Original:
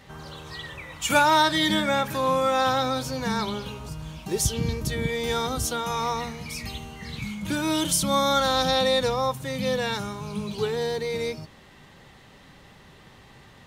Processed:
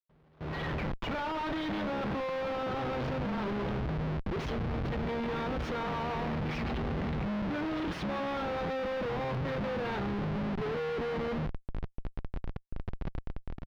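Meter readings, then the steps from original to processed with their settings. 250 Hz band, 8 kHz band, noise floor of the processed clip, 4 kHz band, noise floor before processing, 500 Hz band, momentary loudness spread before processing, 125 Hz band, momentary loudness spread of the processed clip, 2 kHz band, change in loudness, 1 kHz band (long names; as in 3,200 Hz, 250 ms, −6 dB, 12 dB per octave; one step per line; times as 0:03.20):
−4.5 dB, below −25 dB, −63 dBFS, −17.0 dB, −51 dBFS, −7.5 dB, 16 LU, −2.5 dB, 10 LU, −9.5 dB, −9.5 dB, −11.0 dB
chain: reversed playback
downward compressor 5 to 1, threshold −37 dBFS, peak gain reduction 20 dB
reversed playback
parametric band 95 Hz −8 dB 0.52 octaves
on a send: ambience of single reflections 25 ms −10.5 dB, 78 ms −15 dB
on the sum: comparator with hysteresis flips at −41.5 dBFS
automatic gain control gain up to 11.5 dB
high-frequency loss of the air 300 metres
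noise gate with hold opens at −33 dBFS
level −4 dB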